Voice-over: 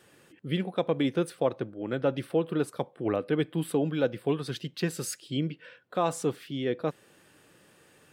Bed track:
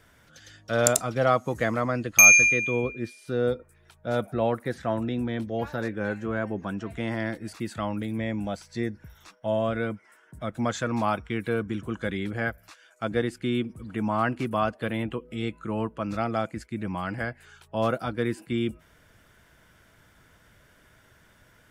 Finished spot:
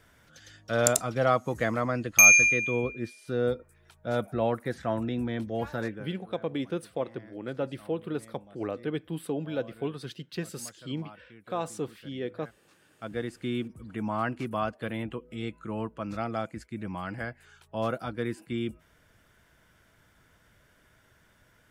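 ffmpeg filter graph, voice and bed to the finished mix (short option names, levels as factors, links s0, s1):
-filter_complex "[0:a]adelay=5550,volume=0.562[s0];[1:a]volume=6.68,afade=t=out:st=5.86:d=0.21:silence=0.0891251,afade=t=in:st=12.58:d=0.89:silence=0.11885[s1];[s0][s1]amix=inputs=2:normalize=0"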